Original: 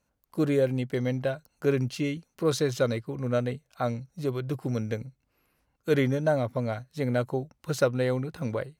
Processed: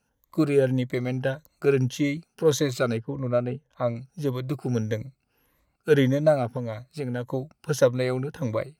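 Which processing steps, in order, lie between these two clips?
rippled gain that drifts along the octave scale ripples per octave 1.1, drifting +1.7 Hz, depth 11 dB
0:02.97–0:03.96: low-pass filter 1,400 Hz 6 dB per octave
0:06.50–0:07.30: downward compressor 2.5 to 1, threshold −31 dBFS, peak gain reduction 7.5 dB
level +1.5 dB

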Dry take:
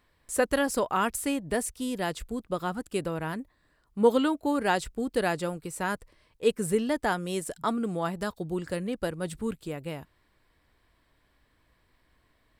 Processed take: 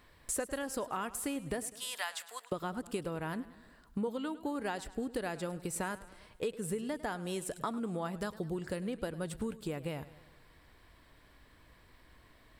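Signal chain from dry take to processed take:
0:01.67–0:02.52: high-pass filter 900 Hz 24 dB per octave
downward compressor 10 to 1, threshold −40 dBFS, peak gain reduction 24.5 dB
feedback echo with a swinging delay time 103 ms, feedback 56%, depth 86 cents, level −17 dB
level +6.5 dB

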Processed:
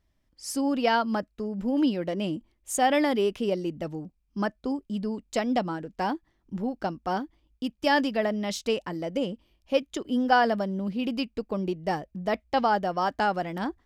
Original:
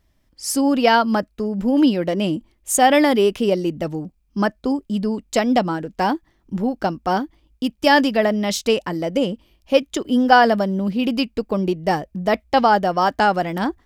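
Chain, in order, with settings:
high-shelf EQ 11,000 Hz −7.5 dB
level −8.5 dB

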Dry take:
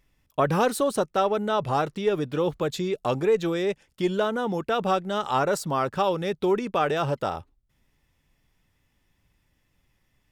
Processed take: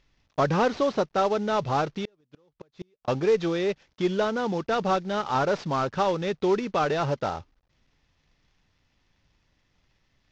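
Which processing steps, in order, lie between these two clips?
variable-slope delta modulation 32 kbit/s
0:01.91–0:03.08: gate with flip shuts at −20 dBFS, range −39 dB

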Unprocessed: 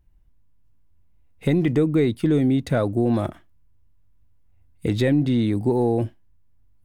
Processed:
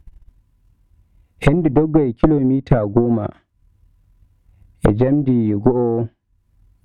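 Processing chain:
downward compressor 2.5 to 1, threshold −24 dBFS, peak gain reduction 6.5 dB
transient designer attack +11 dB, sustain −9 dB
treble cut that deepens with the level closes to 1,100 Hz, closed at −20.5 dBFS
harmonic generator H 4 −10 dB, 5 −9 dB, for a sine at −2.5 dBFS

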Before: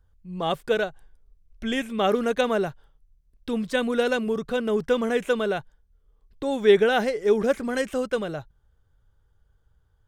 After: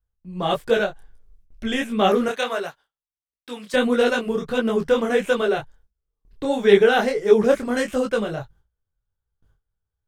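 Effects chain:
0:02.28–0:03.74: high-pass filter 1,200 Hz 6 dB per octave
noise gate with hold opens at −51 dBFS
micro pitch shift up and down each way 52 cents
level +7.5 dB

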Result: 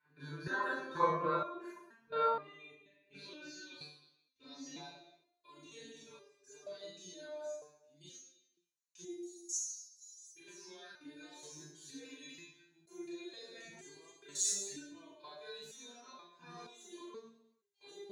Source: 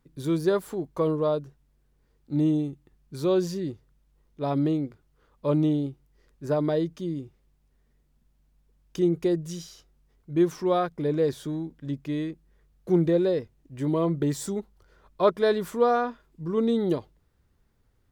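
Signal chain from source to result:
delay that plays each chunk backwards 580 ms, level −3 dB
0:09.10–0:10.35: inverse Chebyshev band-stop filter 120–1,100 Hz, stop band 80 dB
reverb reduction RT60 1.7 s
EQ curve with evenly spaced ripples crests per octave 1.5, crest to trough 9 dB
downward compressor 3 to 1, threshold −28 dBFS, peak gain reduction 12.5 dB
band-pass filter sweep 1,400 Hz → 7,200 Hz, 0:01.89–0:05.02
output level in coarse steps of 23 dB
convolution reverb RT60 0.85 s, pre-delay 30 ms, DRR −7.5 dB
step-sequenced resonator 2.1 Hz 150–400 Hz
level +16.5 dB

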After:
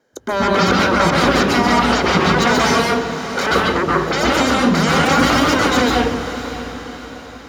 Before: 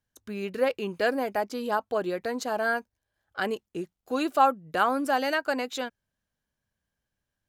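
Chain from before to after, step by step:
parametric band 450 Hz +7.5 dB 1.2 octaves
brickwall limiter −15.5 dBFS, peak gain reduction 10 dB
tape wow and flutter 25 cents
sine wavefolder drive 18 dB, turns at −15 dBFS
feedback delay with all-pass diffusion 611 ms, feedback 48%, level −12 dB
convolution reverb RT60 1.1 s, pre-delay 128 ms, DRR −3 dB
level −10.5 dB

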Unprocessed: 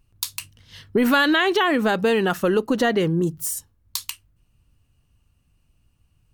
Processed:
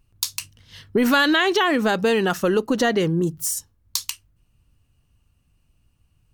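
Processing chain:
dynamic equaliser 5,800 Hz, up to +7 dB, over −46 dBFS, Q 1.6

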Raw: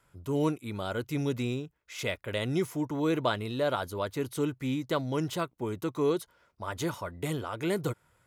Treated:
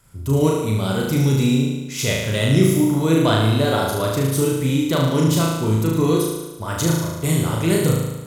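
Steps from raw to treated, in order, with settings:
0:06.83–0:07.28: noise gate −33 dBFS, range −6 dB
bass and treble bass +10 dB, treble +10 dB
flutter between parallel walls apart 6.3 metres, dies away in 1.1 s
level +5 dB

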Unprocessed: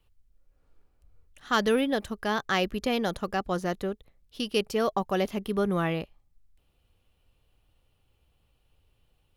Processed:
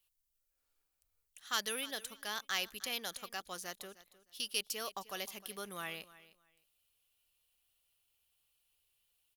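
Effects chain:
first-order pre-emphasis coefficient 0.97
repeating echo 308 ms, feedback 20%, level −18 dB
level +3 dB

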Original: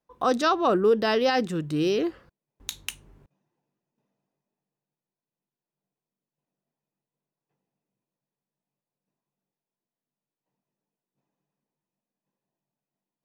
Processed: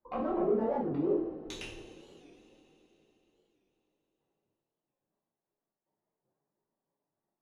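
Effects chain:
adaptive Wiener filter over 15 samples
parametric band 170 Hz −13 dB 0.46 octaves
gate on every frequency bin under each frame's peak −30 dB strong
time stretch by overlap-add 0.56×, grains 36 ms
soft clipping −26.5 dBFS, distortion −8 dB
amplitude tremolo 1.8 Hz, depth 39%
treble cut that deepens with the level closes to 590 Hz, closed at −32.5 dBFS
brickwall limiter −32 dBFS, peak gain reduction 6 dB
coupled-rooms reverb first 0.56 s, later 4 s, from −19 dB, DRR −7 dB
wow of a warped record 45 rpm, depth 160 cents

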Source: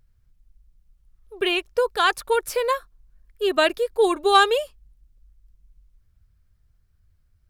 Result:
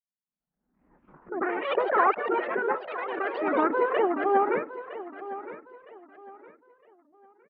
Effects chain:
one-sided soft clipper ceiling −11 dBFS
downward expander −48 dBFS
noise reduction from a noise print of the clip's start 10 dB
harmonic and percussive parts rebalanced percussive +7 dB
in parallel at −11 dB: sample-and-hold swept by an LFO 15×, swing 60% 2.5 Hz
on the sum: elliptic band-pass filter 210–1,900 Hz, stop band 40 dB
formants moved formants −4 semitones
delay with pitch and tempo change per echo 363 ms, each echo +4 semitones, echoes 3, each echo −6 dB
high-frequency loss of the air 240 metres
on a send: repeating echo 961 ms, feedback 30%, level −14 dB
on the sum: background raised ahead of every attack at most 69 dB per second
level −5 dB

